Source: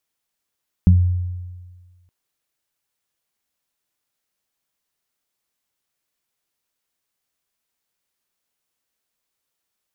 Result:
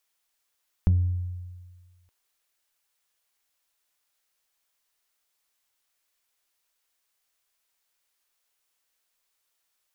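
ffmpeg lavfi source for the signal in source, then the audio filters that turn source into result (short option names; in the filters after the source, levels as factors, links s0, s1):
-f lavfi -i "aevalsrc='0.422*pow(10,-3*t/1.53)*sin(2*PI*89.5*t)+0.376*pow(10,-3*t/0.24)*sin(2*PI*179*t)':d=1.22:s=44100"
-filter_complex "[0:a]equalizer=f=160:w=0.53:g=-14,asplit=2[s0][s1];[s1]asoftclip=type=tanh:threshold=0.0447,volume=0.447[s2];[s0][s2]amix=inputs=2:normalize=0"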